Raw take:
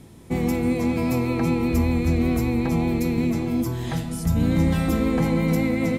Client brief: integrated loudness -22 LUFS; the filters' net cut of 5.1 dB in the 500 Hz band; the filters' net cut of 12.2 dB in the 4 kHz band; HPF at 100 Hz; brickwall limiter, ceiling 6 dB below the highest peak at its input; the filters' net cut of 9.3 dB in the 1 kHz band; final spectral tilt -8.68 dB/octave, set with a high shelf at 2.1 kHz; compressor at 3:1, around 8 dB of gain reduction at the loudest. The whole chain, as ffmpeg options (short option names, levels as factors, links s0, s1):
-af "highpass=100,equalizer=f=500:t=o:g=-4,equalizer=f=1000:t=o:g=-9,highshelf=f=2100:g=-7.5,equalizer=f=4000:t=o:g=-7.5,acompressor=threshold=0.0316:ratio=3,volume=3.98,alimiter=limit=0.2:level=0:latency=1"